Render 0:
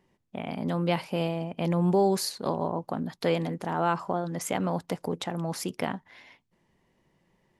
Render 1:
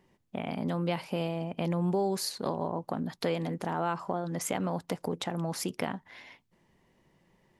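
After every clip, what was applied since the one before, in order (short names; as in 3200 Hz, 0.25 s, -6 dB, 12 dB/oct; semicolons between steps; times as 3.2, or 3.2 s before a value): compressor 2:1, threshold -33 dBFS, peak gain reduction 8.5 dB; gain +2 dB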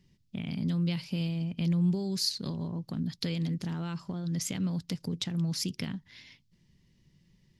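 EQ curve 150 Hz 0 dB, 750 Hz -25 dB, 5000 Hz +1 dB, 8800 Hz -10 dB; gain +6.5 dB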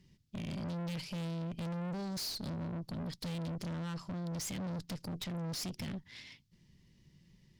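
tube stage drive 40 dB, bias 0.5; gain +3 dB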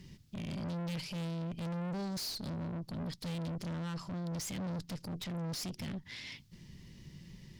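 compressor 2.5:1, threshold -52 dBFS, peak gain reduction 9.5 dB; limiter -46.5 dBFS, peak gain reduction 7.5 dB; gain +11.5 dB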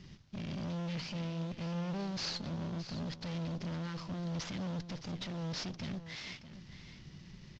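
CVSD 32 kbps; echo 0.618 s -12.5 dB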